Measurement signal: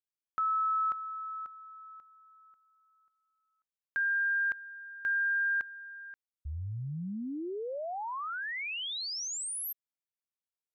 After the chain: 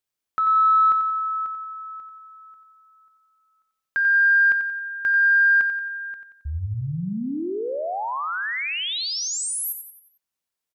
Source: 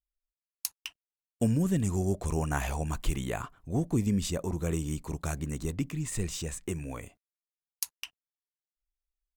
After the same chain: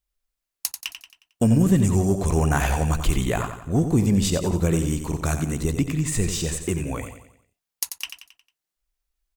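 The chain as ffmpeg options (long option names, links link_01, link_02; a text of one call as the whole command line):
ffmpeg -i in.wav -af "aeval=exprs='0.299*sin(PI/2*1.78*val(0)/0.299)':channel_layout=same,aecho=1:1:90|180|270|360|450:0.376|0.169|0.0761|0.0342|0.0154" out.wav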